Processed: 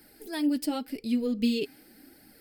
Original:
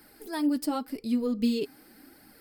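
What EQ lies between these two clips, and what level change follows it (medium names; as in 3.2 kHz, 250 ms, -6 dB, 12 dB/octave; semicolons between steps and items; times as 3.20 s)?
dynamic bell 2.7 kHz, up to +6 dB, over -55 dBFS, Q 1.3; peaking EQ 1.1 kHz -10.5 dB 0.61 oct; 0.0 dB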